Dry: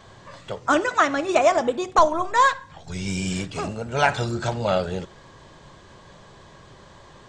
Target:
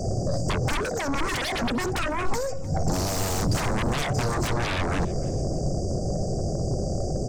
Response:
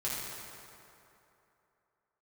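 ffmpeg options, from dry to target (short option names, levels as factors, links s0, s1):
-filter_complex "[0:a]acompressor=threshold=0.0501:ratio=8,afftfilt=real='re*(1-between(b*sr/4096,790,4600))':imag='im*(1-between(b*sr/4096,790,4600))':win_size=4096:overlap=0.75,aeval=exprs='0.112*sin(PI/2*7.94*val(0)/0.112)':c=same,highshelf=f=8000:g=-5.5,acrossover=split=180[s0][s1];[s1]acompressor=threshold=0.0447:ratio=4[s2];[s0][s2]amix=inputs=2:normalize=0,lowshelf=f=130:g=4.5,aecho=1:1:306|612:0.0794|0.0191"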